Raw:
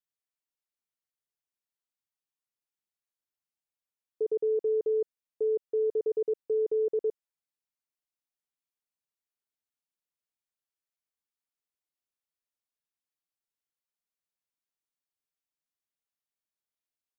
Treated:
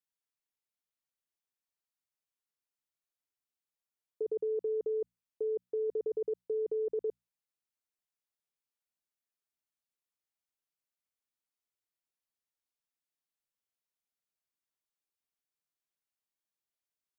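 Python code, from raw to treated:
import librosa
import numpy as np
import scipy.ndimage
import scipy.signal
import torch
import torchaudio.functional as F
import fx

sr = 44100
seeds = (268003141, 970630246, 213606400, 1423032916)

y = fx.level_steps(x, sr, step_db=16)
y = fx.hum_notches(y, sr, base_hz=60, count=4)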